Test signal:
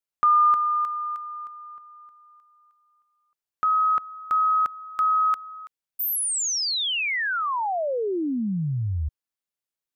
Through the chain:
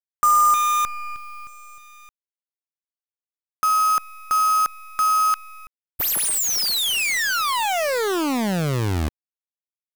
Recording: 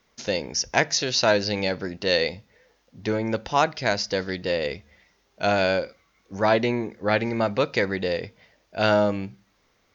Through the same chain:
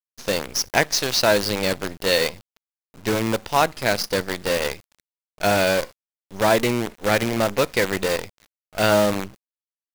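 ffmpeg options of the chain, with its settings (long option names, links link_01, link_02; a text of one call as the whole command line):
ffmpeg -i in.wav -af "acrusher=bits=5:dc=4:mix=0:aa=0.000001,volume=2dB" out.wav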